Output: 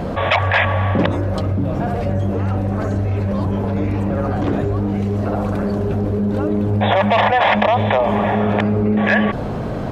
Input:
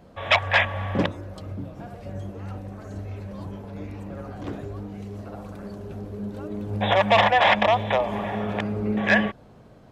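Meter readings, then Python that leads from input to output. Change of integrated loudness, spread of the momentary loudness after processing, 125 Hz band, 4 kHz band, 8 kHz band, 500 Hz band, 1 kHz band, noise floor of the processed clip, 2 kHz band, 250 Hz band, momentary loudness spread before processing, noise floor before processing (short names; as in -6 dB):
+4.5 dB, 6 LU, +13.0 dB, +1.0 dB, n/a, +7.5 dB, +5.5 dB, -23 dBFS, +3.0 dB, +11.0 dB, 19 LU, -50 dBFS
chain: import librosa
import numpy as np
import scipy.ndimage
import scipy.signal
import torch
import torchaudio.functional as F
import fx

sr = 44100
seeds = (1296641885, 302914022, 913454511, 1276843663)

y = fx.high_shelf(x, sr, hz=3500.0, db=-9.5)
y = fx.env_flatten(y, sr, amount_pct=70)
y = y * 10.0 ** (2.0 / 20.0)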